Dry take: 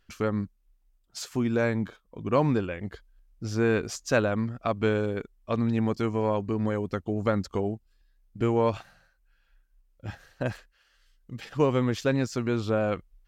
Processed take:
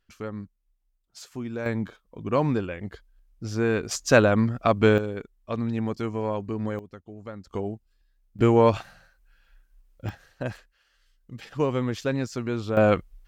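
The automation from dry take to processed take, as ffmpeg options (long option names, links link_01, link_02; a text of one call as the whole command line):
ffmpeg -i in.wav -af "asetnsamples=nb_out_samples=441:pad=0,asendcmd='1.66 volume volume 0dB;3.91 volume volume 6.5dB;4.98 volume volume -2dB;6.79 volume volume -13.5dB;7.47 volume volume -2dB;8.39 volume volume 6dB;10.09 volume volume -1.5dB;12.77 volume volume 8dB',volume=-7dB" out.wav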